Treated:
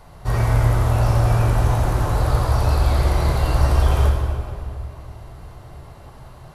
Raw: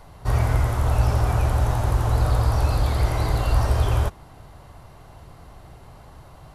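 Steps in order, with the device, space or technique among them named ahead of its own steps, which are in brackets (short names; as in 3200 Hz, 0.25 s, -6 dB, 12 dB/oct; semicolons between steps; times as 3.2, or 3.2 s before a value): stairwell (reverb RT60 2.5 s, pre-delay 3 ms, DRR -0.5 dB)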